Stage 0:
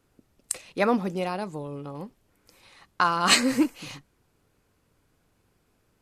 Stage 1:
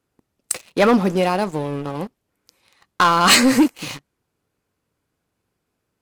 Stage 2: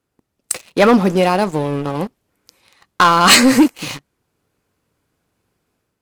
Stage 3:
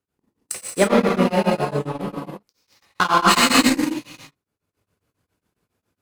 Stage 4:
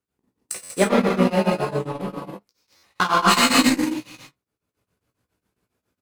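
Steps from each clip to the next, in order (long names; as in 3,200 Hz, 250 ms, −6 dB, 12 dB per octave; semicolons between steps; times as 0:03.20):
high-pass filter 84 Hz 6 dB per octave; leveller curve on the samples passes 3
automatic gain control gain up to 6 dB
reverb whose tail is shaped and stops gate 370 ms flat, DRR −6 dB; transient designer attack +3 dB, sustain −8 dB; tremolo along a rectified sine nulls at 7.3 Hz; level −8.5 dB
double-tracking delay 16 ms −8 dB; buffer that repeats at 0:00.63/0:02.76, samples 512, times 5; level −2 dB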